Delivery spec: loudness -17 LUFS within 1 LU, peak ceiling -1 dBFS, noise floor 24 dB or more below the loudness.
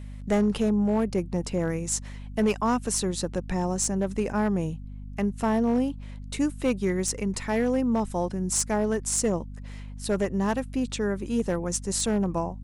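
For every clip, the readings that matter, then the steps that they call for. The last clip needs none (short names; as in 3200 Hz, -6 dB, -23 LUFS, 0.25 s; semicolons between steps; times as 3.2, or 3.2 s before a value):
clipped 0.7%; flat tops at -17.0 dBFS; hum 50 Hz; harmonics up to 250 Hz; hum level -36 dBFS; loudness -27.0 LUFS; peak -17.0 dBFS; loudness target -17.0 LUFS
-> clip repair -17 dBFS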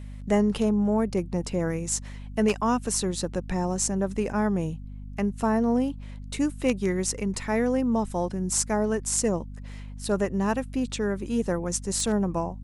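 clipped 0.0%; hum 50 Hz; harmonics up to 250 Hz; hum level -36 dBFS
-> de-hum 50 Hz, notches 5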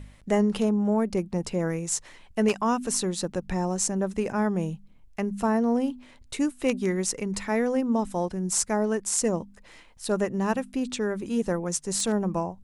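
hum none; loudness -27.0 LUFS; peak -9.0 dBFS; loudness target -17.0 LUFS
-> gain +10 dB; limiter -1 dBFS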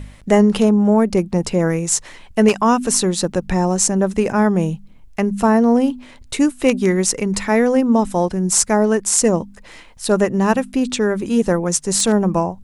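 loudness -17.0 LUFS; peak -1.0 dBFS; noise floor -43 dBFS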